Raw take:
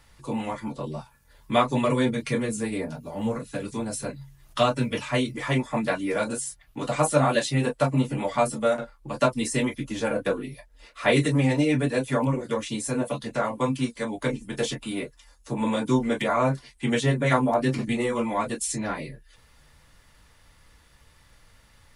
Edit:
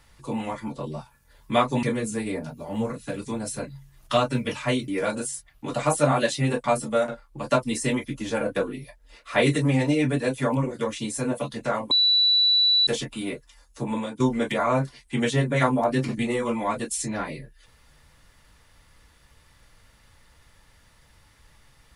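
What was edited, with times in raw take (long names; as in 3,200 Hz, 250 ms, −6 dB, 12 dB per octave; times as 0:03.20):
0:01.83–0:02.29: remove
0:05.34–0:06.01: remove
0:07.77–0:08.34: remove
0:13.61–0:14.57: beep over 3,950 Hz −16 dBFS
0:15.54–0:15.90: fade out, to −14 dB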